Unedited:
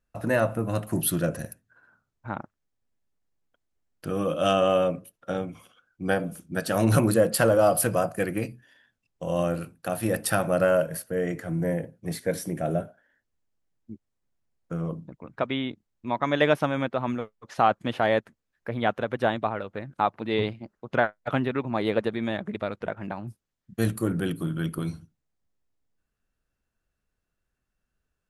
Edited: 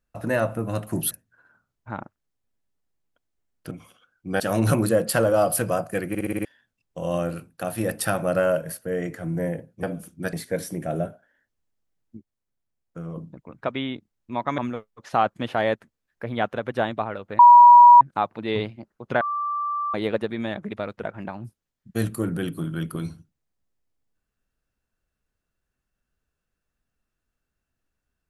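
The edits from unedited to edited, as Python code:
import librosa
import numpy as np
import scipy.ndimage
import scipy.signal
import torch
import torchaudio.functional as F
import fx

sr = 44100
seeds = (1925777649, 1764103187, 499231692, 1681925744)

y = fx.edit(x, sr, fx.cut(start_s=1.11, length_s=0.38),
    fx.cut(start_s=4.09, length_s=1.37),
    fx.move(start_s=6.15, length_s=0.5, to_s=12.08),
    fx.stutter_over(start_s=8.34, slice_s=0.06, count=6),
    fx.clip_gain(start_s=13.92, length_s=0.99, db=-4.5),
    fx.cut(start_s=16.33, length_s=0.7),
    fx.insert_tone(at_s=19.84, length_s=0.62, hz=965.0, db=-6.0),
    fx.bleep(start_s=21.04, length_s=0.73, hz=1170.0, db=-23.5), tone=tone)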